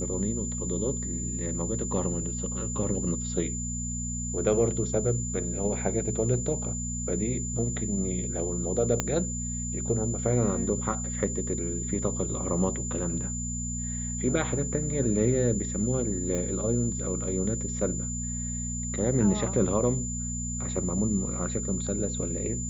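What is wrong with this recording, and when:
hum 60 Hz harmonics 4 -34 dBFS
tone 7100 Hz -34 dBFS
9 pop -10 dBFS
16.35 pop -19 dBFS

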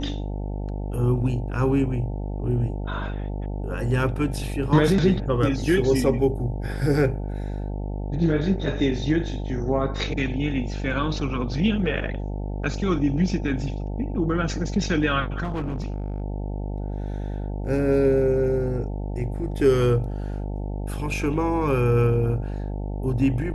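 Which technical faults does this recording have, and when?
buzz 50 Hz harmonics 18 -29 dBFS
15.43–16.22 clipped -24 dBFS

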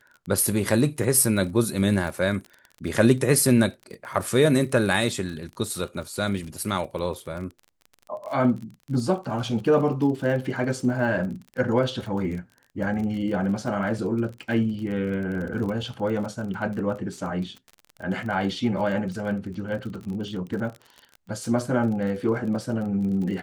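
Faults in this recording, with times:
crackle 38/s -33 dBFS

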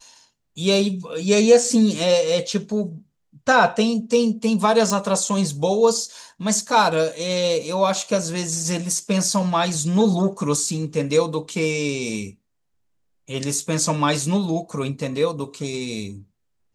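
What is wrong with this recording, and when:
4.9 pop

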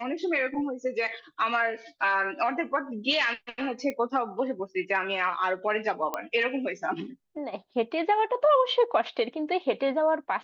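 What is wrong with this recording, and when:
3.9 pop -19 dBFS
6.14 pop -15 dBFS

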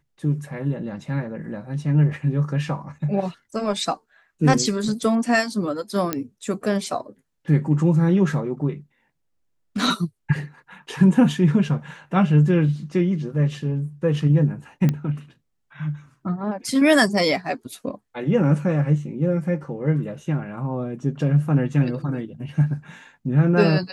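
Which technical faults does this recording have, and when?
6.13 pop -8 dBFS
14.89 pop -10 dBFS

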